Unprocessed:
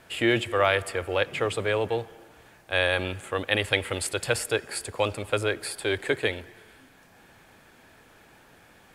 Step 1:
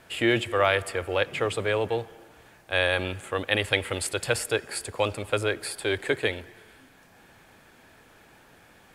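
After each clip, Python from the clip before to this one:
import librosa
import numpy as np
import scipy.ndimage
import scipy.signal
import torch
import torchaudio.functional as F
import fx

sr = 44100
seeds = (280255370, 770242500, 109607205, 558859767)

y = x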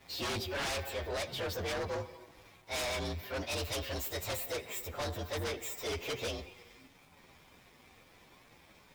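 y = fx.partial_stretch(x, sr, pct=117)
y = 10.0 ** (-25.0 / 20.0) * (np.abs((y / 10.0 ** (-25.0 / 20.0) + 3.0) % 4.0 - 2.0) - 1.0)
y = fx.leveller(y, sr, passes=2)
y = y * 10.0 ** (-7.0 / 20.0)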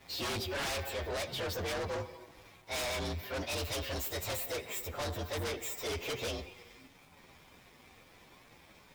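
y = np.clip(10.0 ** (35.5 / 20.0) * x, -1.0, 1.0) / 10.0 ** (35.5 / 20.0)
y = y * 10.0 ** (1.5 / 20.0)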